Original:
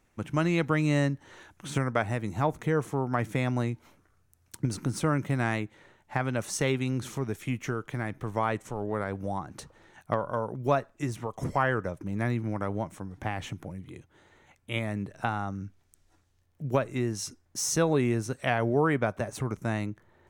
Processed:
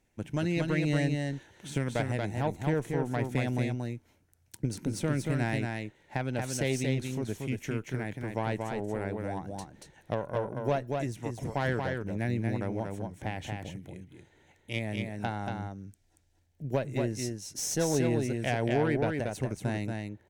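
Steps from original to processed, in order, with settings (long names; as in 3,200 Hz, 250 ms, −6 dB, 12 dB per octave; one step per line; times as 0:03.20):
tube saturation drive 18 dB, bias 0.65
parametric band 1,200 Hz −13.5 dB 0.41 octaves
single-tap delay 232 ms −4 dB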